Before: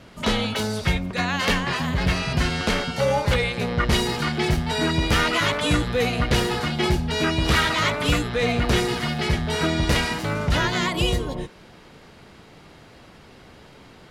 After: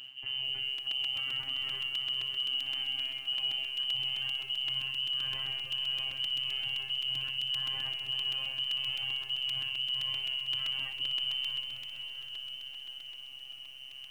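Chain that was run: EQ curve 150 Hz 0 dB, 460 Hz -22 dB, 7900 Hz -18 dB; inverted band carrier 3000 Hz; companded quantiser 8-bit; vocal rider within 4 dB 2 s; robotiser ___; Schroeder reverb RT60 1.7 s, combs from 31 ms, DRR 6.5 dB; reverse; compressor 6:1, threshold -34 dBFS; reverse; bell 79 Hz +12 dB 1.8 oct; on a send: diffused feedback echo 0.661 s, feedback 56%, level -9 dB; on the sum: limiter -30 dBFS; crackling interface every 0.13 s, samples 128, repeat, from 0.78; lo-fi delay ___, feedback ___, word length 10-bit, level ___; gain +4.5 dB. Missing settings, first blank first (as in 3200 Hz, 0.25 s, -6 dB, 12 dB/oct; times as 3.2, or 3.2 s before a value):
133 Hz, 0.45 s, 55%, -11.5 dB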